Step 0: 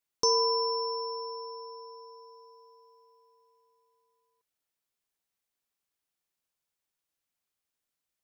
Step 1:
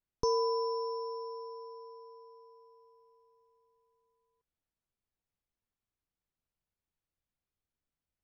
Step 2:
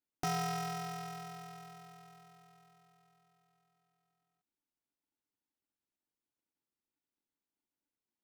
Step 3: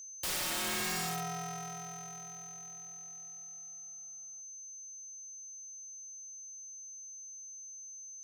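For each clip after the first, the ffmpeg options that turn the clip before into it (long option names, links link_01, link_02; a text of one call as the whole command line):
ffmpeg -i in.wav -af "aemphasis=mode=reproduction:type=riaa,volume=-4.5dB" out.wav
ffmpeg -i in.wav -af "aeval=exprs='val(0)*sgn(sin(2*PI*290*n/s))':channel_layout=same,volume=-5.5dB" out.wav
ffmpeg -i in.wav -af "aeval=exprs='val(0)+0.00224*sin(2*PI*6200*n/s)':channel_layout=same,aeval=exprs='(mod(79.4*val(0)+1,2)-1)/79.4':channel_layout=same,volume=8dB" out.wav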